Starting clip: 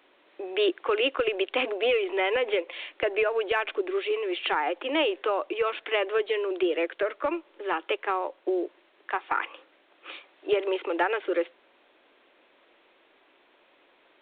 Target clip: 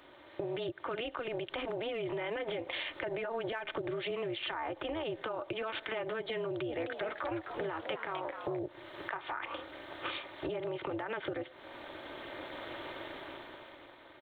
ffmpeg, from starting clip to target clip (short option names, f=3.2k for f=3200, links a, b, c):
-filter_complex "[0:a]equalizer=f=2.6k:w=5.3:g=-9.5,aecho=1:1:3.3:0.43,dynaudnorm=f=170:g=13:m=15dB,alimiter=level_in=5dB:limit=-24dB:level=0:latency=1:release=358,volume=-5dB,acompressor=threshold=-39dB:ratio=6,tremolo=f=230:d=0.71,asettb=1/sr,asplit=3[a][b][c];[a]atrim=end=6.514[d];[b]atrim=start=6.51:end=8.59,asetpts=PTS-STARTPTS,afade=t=in:d=0.004:c=qsin,afade=t=out:st=2.076:d=0.004:c=qsin,asplit=5[e][f][g][h][i];[f]adelay=258,afreqshift=130,volume=-7dB[j];[g]adelay=516,afreqshift=260,volume=-17.2dB[k];[h]adelay=774,afreqshift=390,volume=-27.3dB[l];[i]adelay=1032,afreqshift=520,volume=-37.5dB[m];[e][j][k][l][m]amix=inputs=5:normalize=0,atrim=end_sample=91728[n];[c]atrim=start=8.586[o];[d][n]acrossfade=d=0.004:c1=hsin:c2=qsin[p];[p][o]acrossfade=d=0.004:c1=qsin:c2=hsin,volume=8dB"